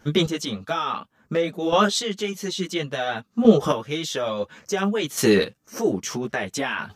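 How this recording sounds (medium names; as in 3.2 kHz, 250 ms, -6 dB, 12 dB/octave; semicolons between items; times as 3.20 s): chopped level 0.58 Hz, depth 65%, duty 15%; a shimmering, thickened sound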